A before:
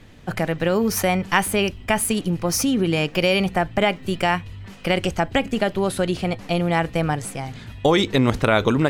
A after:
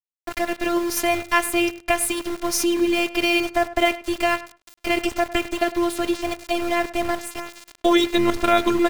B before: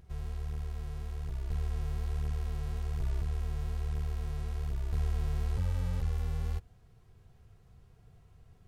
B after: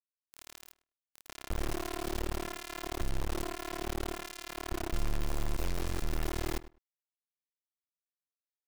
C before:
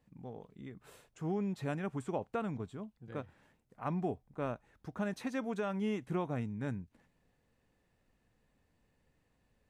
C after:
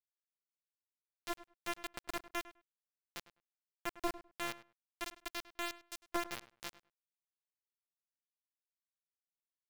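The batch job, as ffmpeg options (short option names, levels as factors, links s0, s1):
-filter_complex "[0:a]afftfilt=real='hypot(re,im)*cos(PI*b)':imag='0':win_size=512:overlap=0.75,aeval=exprs='val(0)*gte(abs(val(0)),0.0251)':c=same,asplit=2[s0][s1];[s1]adelay=102,lowpass=f=2600:p=1,volume=0.158,asplit=2[s2][s3];[s3]adelay=102,lowpass=f=2600:p=1,volume=0.16[s4];[s2][s4]amix=inputs=2:normalize=0[s5];[s0][s5]amix=inputs=2:normalize=0,volume=1.5"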